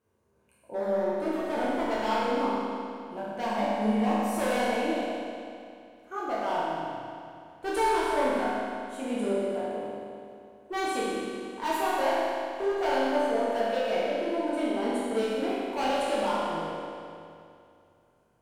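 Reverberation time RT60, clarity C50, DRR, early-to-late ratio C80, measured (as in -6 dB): 2.5 s, -4.0 dB, -8.5 dB, -1.5 dB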